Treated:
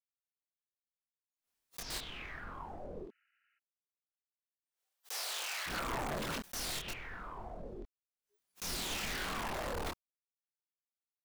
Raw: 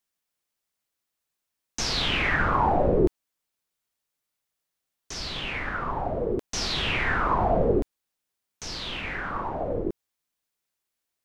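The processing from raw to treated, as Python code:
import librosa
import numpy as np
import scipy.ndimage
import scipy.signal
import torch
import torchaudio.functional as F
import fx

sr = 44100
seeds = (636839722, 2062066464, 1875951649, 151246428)

y = fx.gate_flip(x, sr, shuts_db=-16.0, range_db=-24)
y = fx.level_steps(y, sr, step_db=13)
y = (np.mod(10.0 ** (33.5 / 20.0) * y + 1.0, 2.0) - 1.0) / 10.0 ** (33.5 / 20.0)
y = fx.noise_reduce_blind(y, sr, reduce_db=30)
y = fx.leveller(y, sr, passes=2)
y = fx.highpass(y, sr, hz=fx.line((3.03, 190.0), (5.66, 620.0)), slope=24, at=(3.03, 5.66), fade=0.02)
y = fx.chorus_voices(y, sr, voices=6, hz=1.4, base_ms=25, depth_ms=3.0, mix_pct=45)
y = fx.spec_repair(y, sr, seeds[0], start_s=3.12, length_s=0.44, low_hz=1300.0, high_hz=3000.0, source='before')
y = fx.pre_swell(y, sr, db_per_s=120.0)
y = F.gain(torch.from_numpy(y), 1.5).numpy()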